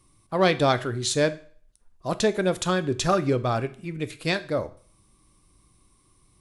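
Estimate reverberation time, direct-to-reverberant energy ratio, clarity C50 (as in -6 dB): 0.50 s, 11.5 dB, 17.0 dB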